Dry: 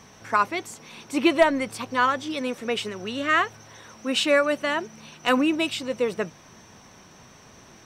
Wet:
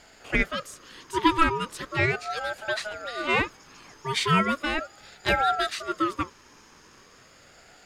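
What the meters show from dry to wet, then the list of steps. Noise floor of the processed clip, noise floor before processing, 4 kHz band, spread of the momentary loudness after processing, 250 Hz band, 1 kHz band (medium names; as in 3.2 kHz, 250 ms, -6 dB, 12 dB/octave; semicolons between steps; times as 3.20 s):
-54 dBFS, -51 dBFS, -2.5 dB, 12 LU, -4.5 dB, -0.5 dB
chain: resonant low shelf 230 Hz -9.5 dB, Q 1.5; ring modulator with a swept carrier 870 Hz, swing 25%, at 0.38 Hz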